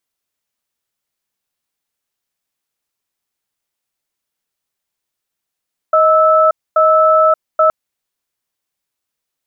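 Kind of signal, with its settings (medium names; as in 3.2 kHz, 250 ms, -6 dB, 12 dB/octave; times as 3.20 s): cadence 629 Hz, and 1.31 kHz, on 0.58 s, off 0.25 s, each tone -10 dBFS 1.77 s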